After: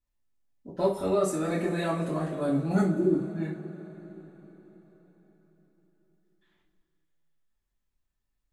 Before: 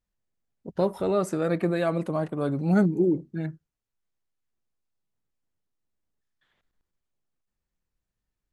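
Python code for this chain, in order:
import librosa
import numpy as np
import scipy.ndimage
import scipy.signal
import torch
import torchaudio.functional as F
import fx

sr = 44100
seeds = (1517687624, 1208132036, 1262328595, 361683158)

y = fx.rev_double_slope(x, sr, seeds[0], early_s=0.33, late_s=4.7, knee_db=-22, drr_db=-7.0)
y = fx.dynamic_eq(y, sr, hz=8400.0, q=1.1, threshold_db=-53.0, ratio=4.0, max_db=6)
y = y * 10.0 ** (-8.5 / 20.0)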